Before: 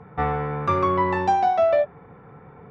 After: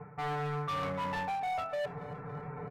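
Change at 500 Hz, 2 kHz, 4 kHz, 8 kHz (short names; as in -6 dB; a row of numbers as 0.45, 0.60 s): -15.5 dB, -8.0 dB, -2.5 dB, n/a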